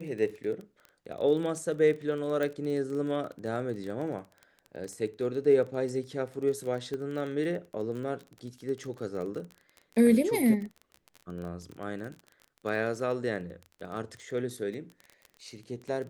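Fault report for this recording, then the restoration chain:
crackle 24/s -36 dBFS
2.43 pop -20 dBFS
6.94 pop -25 dBFS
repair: de-click

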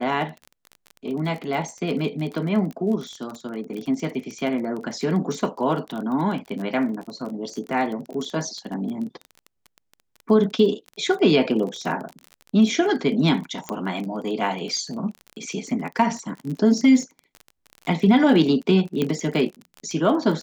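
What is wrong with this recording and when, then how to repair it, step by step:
crackle 28/s -30 dBFS
13.69 pop -12 dBFS
19.02 pop -11 dBFS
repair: de-click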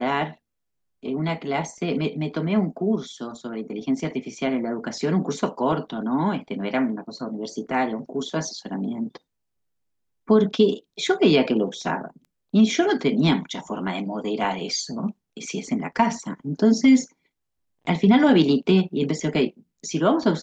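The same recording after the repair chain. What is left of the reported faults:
none

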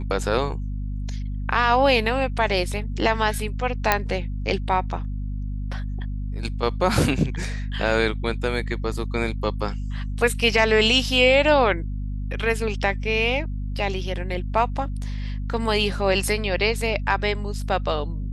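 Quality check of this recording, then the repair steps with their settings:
hum 50 Hz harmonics 5 -28 dBFS
3.92 pop -2 dBFS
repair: de-click; de-hum 50 Hz, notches 5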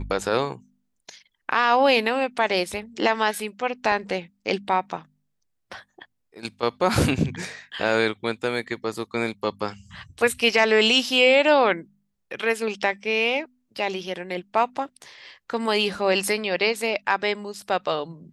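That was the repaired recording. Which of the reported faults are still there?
3.92 pop

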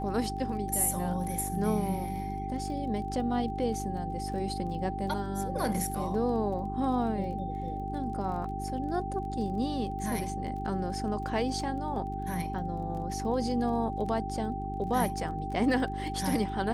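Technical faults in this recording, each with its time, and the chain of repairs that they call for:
crackle 23/s -40 dBFS
hum 50 Hz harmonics 8 -37 dBFS
tone 780 Hz -36 dBFS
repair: de-click; de-hum 50 Hz, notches 8; notch 780 Hz, Q 30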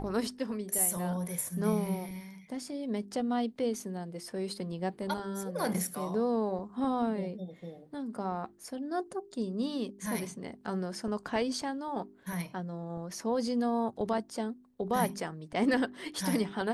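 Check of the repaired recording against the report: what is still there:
none

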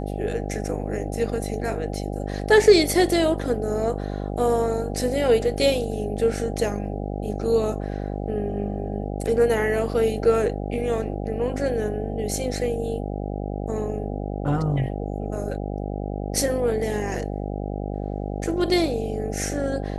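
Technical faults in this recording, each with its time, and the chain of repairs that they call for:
buzz 50 Hz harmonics 16 -29 dBFS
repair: de-hum 50 Hz, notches 16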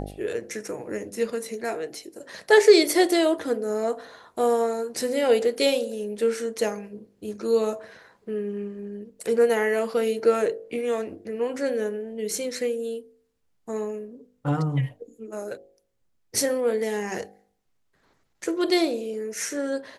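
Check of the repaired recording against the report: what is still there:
none

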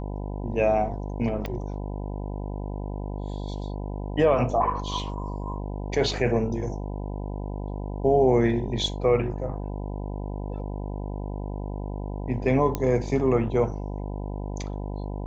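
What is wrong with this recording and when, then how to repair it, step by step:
buzz 50 Hz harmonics 20 -32 dBFS
1.46 pop -19 dBFS
12.75 pop -12 dBFS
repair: de-click; de-hum 50 Hz, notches 20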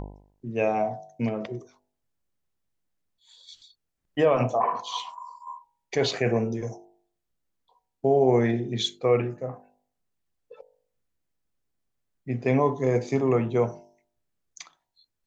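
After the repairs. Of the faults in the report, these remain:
none

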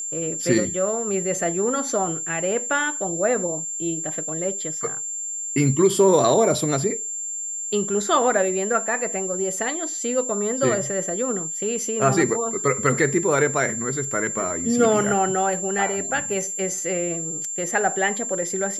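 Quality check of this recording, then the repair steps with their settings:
tone 7300 Hz -27 dBFS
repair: notch 7300 Hz, Q 30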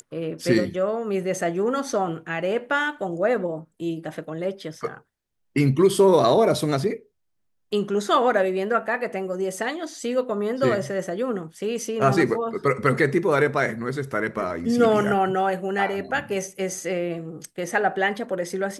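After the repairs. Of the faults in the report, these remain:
none

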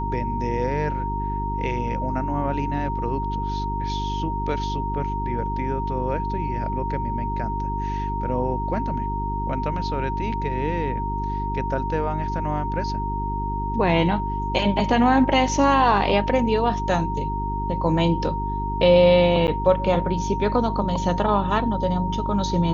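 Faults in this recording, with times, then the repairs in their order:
hum 50 Hz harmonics 8 -28 dBFS
tone 930 Hz -27 dBFS
19.47–19.48 gap 9.6 ms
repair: de-hum 50 Hz, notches 8; notch 930 Hz, Q 30; interpolate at 19.47, 9.6 ms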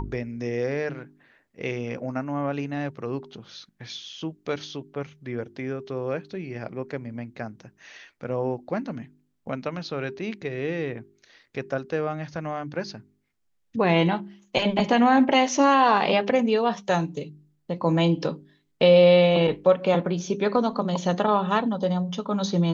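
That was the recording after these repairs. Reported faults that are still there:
none

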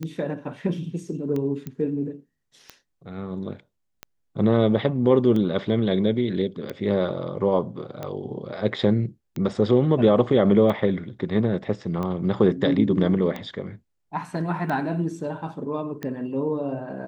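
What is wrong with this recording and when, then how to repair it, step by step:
tick 45 rpm -18 dBFS
1.67 pop -20 dBFS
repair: de-click

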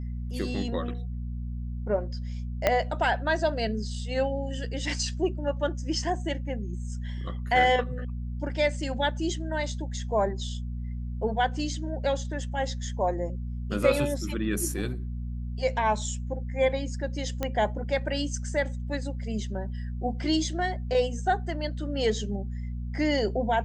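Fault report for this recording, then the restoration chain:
hum 60 Hz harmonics 4 -33 dBFS
2.67 pop -8 dBFS
17.43 pop -14 dBFS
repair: de-click; de-hum 60 Hz, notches 4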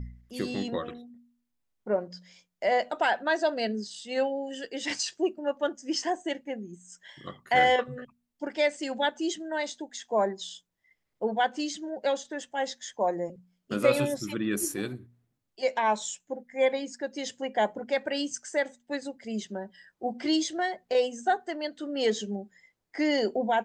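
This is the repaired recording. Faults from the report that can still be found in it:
2.67 pop

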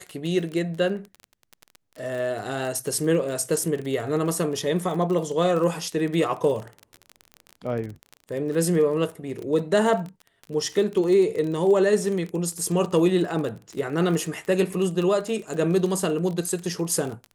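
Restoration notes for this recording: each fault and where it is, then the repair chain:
crackle 26/s -29 dBFS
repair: de-click

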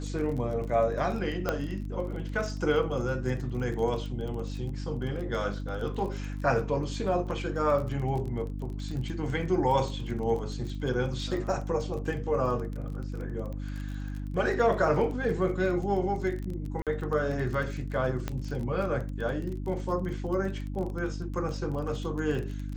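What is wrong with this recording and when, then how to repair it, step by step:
crackle 24/s -35 dBFS
hum 50 Hz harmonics 6 -35 dBFS
1.49 pop -14 dBFS
16.82–16.87 gap 47 ms
18.28 pop -17 dBFS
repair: de-click; de-hum 50 Hz, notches 6; interpolate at 16.82, 47 ms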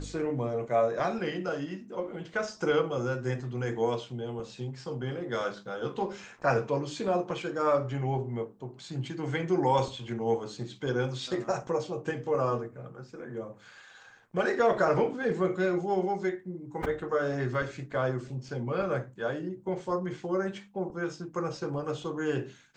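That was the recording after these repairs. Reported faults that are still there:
none

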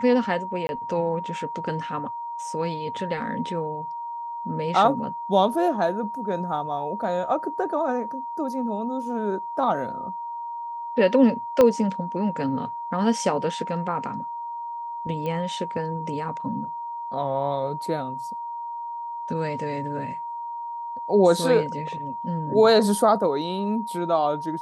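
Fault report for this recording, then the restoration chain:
tone 940 Hz -30 dBFS
0.67–0.69 gap 21 ms
11.61 pop -7 dBFS
15.26 pop -19 dBFS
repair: de-click; notch 940 Hz, Q 30; interpolate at 0.67, 21 ms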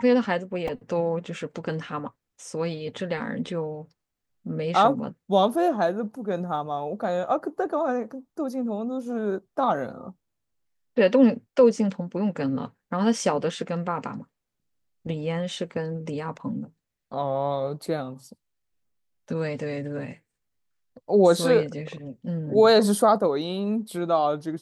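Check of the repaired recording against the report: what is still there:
11.61 pop

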